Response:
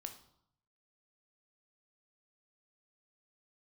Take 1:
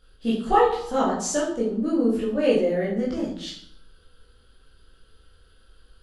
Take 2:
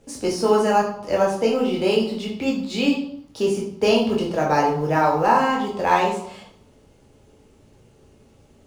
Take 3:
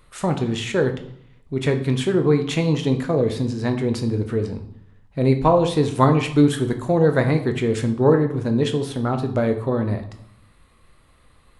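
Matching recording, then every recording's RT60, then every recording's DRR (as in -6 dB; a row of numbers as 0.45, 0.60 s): 3; 0.70, 0.70, 0.70 s; -7.0, -2.5, 5.5 dB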